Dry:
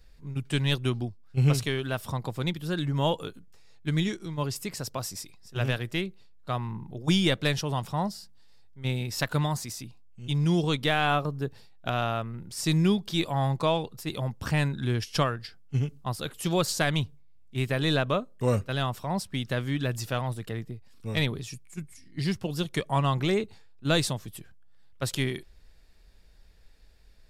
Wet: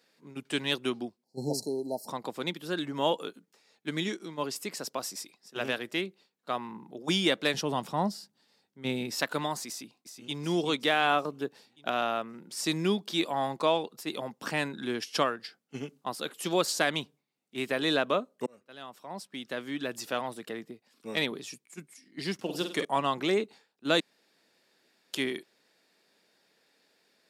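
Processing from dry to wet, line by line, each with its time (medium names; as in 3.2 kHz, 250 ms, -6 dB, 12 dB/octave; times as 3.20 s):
1.24–2.08 s: spectral selection erased 940–4000 Hz
7.54–9.15 s: bass shelf 230 Hz +11.5 dB
9.68–10.36 s: echo throw 370 ms, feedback 55%, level -8 dB
18.46–20.22 s: fade in
22.34–22.85 s: flutter echo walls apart 8.5 m, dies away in 0.43 s
24.00–25.13 s: room tone
whole clip: high-pass 230 Hz 24 dB/octave; treble shelf 11 kHz -4 dB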